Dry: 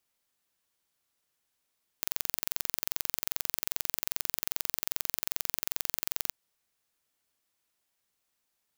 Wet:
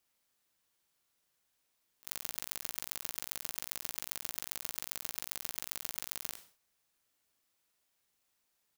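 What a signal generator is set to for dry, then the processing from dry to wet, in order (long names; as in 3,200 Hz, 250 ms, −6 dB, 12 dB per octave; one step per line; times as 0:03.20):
impulse train 22.5 per second, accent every 0, −2.5 dBFS 4.31 s
volume swells 157 ms
ambience of single reflections 39 ms −8.5 dB, 57 ms −15.5 dB
level that may fall only so fast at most 130 dB per second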